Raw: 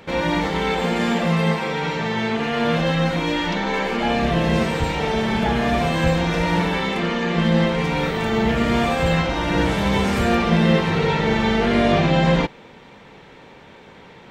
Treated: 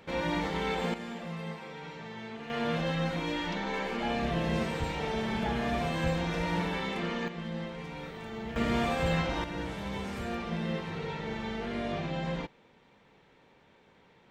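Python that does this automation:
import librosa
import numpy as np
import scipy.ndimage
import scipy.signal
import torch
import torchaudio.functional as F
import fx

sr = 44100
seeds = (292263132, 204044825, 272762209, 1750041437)

y = fx.gain(x, sr, db=fx.steps((0.0, -10.0), (0.94, -19.5), (2.5, -11.0), (7.28, -19.5), (8.56, -9.5), (9.44, -17.0)))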